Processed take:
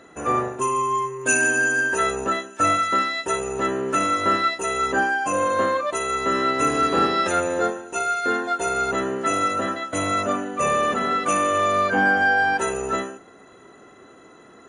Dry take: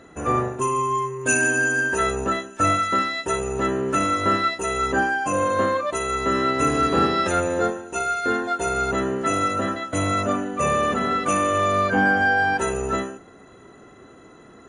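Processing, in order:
low-shelf EQ 170 Hz −11.5 dB
level +1 dB

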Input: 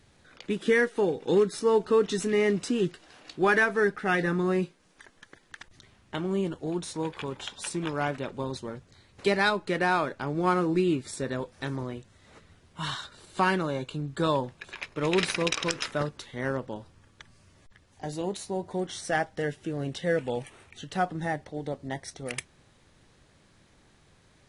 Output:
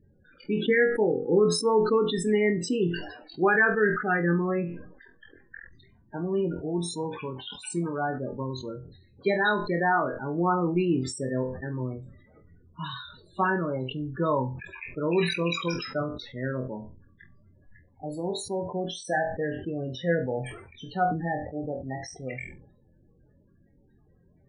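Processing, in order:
spectral peaks only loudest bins 16
flutter between parallel walls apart 4 metres, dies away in 0.22 s
level that may fall only so fast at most 71 dB per second

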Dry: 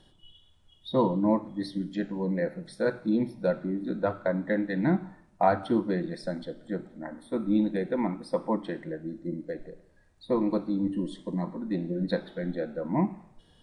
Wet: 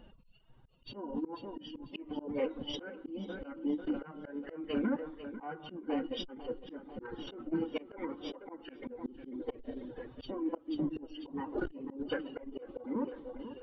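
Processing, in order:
hearing-aid frequency compression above 2,700 Hz 4 to 1
camcorder AGC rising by 7 dB per second
hum removal 49.6 Hz, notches 28
treble cut that deepens with the level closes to 2,900 Hz, closed at −20 dBFS
reverb reduction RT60 1.3 s
downward compressor 4 to 1, threshold −35 dBFS, peak gain reduction 15 dB
low-pass that shuts in the quiet parts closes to 1,300 Hz, open at −31.5 dBFS
phase-vocoder pitch shift with formants kept +7.5 semitones
tape delay 494 ms, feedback 52%, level −12 dB, low-pass 3,500 Hz
volume swells 270 ms
saturating transformer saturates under 180 Hz
level +6 dB

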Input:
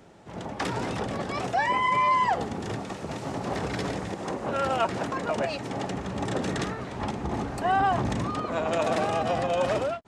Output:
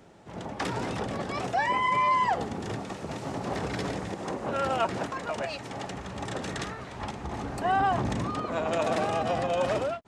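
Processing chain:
0:05.06–0:07.44: parametric band 260 Hz −6 dB 2.7 octaves
level −1.5 dB

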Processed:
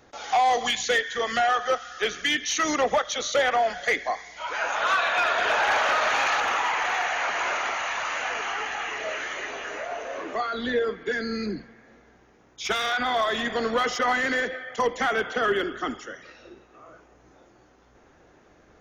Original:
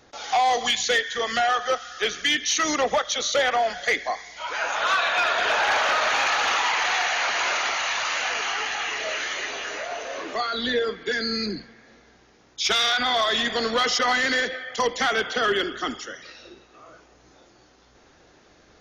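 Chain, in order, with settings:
parametric band 4,500 Hz −5.5 dB 1.3 octaves, from 0:06.40 −12 dB

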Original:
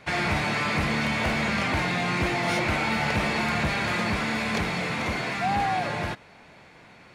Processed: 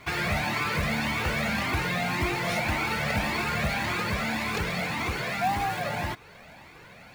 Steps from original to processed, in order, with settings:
in parallel at +1 dB: downward compressor, threshold −35 dBFS, peak gain reduction 13 dB
on the sum: floating-point word with a short mantissa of 2 bits
flanger whose copies keep moving one way rising 1.8 Hz

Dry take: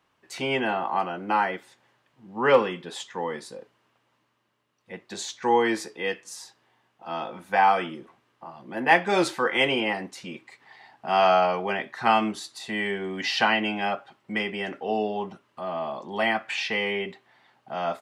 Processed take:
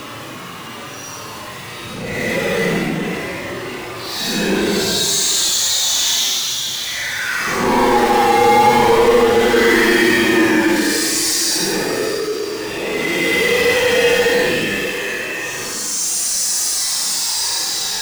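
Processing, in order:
power curve on the samples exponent 0.35
extreme stretch with random phases 10×, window 0.05 s, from 0:04.68
transient designer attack −4 dB, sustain +1 dB

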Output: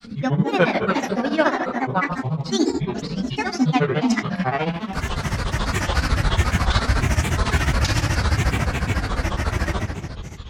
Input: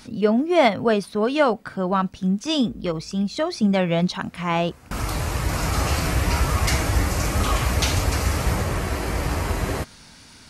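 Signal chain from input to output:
thirty-one-band graphic EQ 400 Hz −7 dB, 1,600 Hz +8 dB, 5,000 Hz +7 dB
rectangular room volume 3,300 cubic metres, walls mixed, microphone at 2.1 metres
granular cloud, grains 14 per second, spray 32 ms, pitch spread up and down by 7 semitones
high-shelf EQ 9,400 Hz −10 dB

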